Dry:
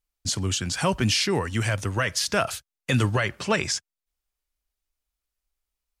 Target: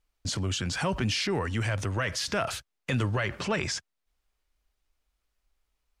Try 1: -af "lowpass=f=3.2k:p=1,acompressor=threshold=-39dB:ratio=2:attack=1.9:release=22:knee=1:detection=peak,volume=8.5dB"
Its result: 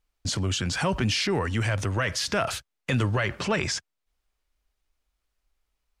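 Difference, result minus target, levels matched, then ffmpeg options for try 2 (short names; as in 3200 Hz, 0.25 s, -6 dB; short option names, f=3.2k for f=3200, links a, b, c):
compressor: peak gain reduction -3 dB
-af "lowpass=f=3.2k:p=1,acompressor=threshold=-45dB:ratio=2:attack=1.9:release=22:knee=1:detection=peak,volume=8.5dB"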